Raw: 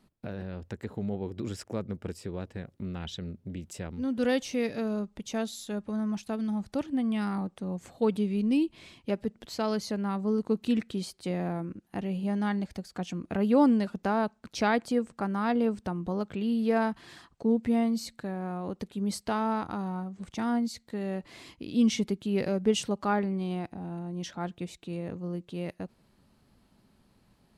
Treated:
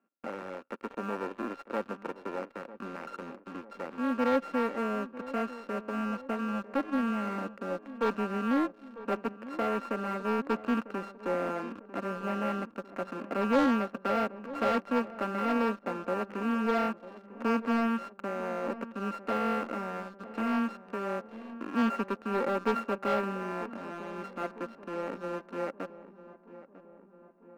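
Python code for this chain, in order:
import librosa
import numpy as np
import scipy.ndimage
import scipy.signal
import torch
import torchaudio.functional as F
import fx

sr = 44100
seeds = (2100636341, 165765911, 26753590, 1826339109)

p1 = np.r_[np.sort(x[:len(x) // 32 * 32].reshape(-1, 32), axis=1).ravel(), x[len(x) // 32 * 32:]]
p2 = scipy.signal.sosfilt(scipy.signal.ellip(3, 1.0, 40, [240.0, 2200.0], 'bandpass', fs=sr, output='sos'), p1)
p3 = fx.leveller(p2, sr, passes=2)
p4 = np.clip(p3, -10.0 ** (-24.5 / 20.0), 10.0 ** (-24.5 / 20.0))
p5 = p3 + F.gain(torch.from_numpy(p4), -6.5).numpy()
p6 = fx.peak_eq(p5, sr, hz=540.0, db=9.5, octaves=0.21)
p7 = p6 + fx.echo_filtered(p6, sr, ms=948, feedback_pct=59, hz=1400.0, wet_db=-15, dry=0)
y = F.gain(torch.from_numpy(p7), -9.0).numpy()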